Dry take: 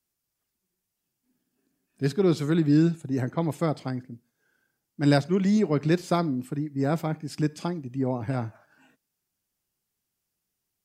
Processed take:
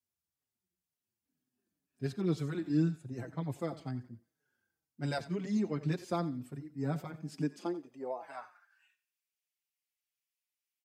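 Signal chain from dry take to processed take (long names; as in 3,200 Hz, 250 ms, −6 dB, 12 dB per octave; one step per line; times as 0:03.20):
feedback echo with a high-pass in the loop 89 ms, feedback 36%, high-pass 370 Hz, level −15.5 dB
high-pass filter sweep 78 Hz → 2,300 Hz, 0:06.81–0:08.90
barber-pole flanger 5 ms −2 Hz
level −8.5 dB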